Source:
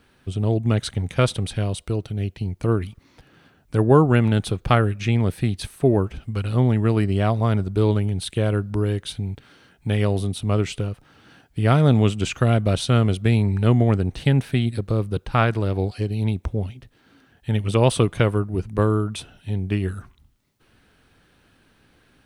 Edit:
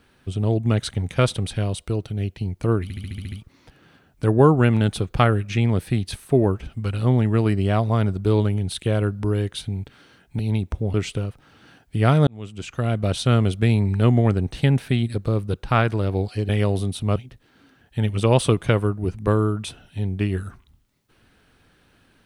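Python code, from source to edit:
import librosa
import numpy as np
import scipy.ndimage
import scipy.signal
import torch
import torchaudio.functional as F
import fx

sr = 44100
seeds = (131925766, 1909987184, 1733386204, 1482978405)

y = fx.edit(x, sr, fx.stutter(start_s=2.83, slice_s=0.07, count=8),
    fx.swap(start_s=9.9, length_s=0.67, other_s=16.12, other_length_s=0.55),
    fx.fade_in_span(start_s=11.9, length_s=1.02), tone=tone)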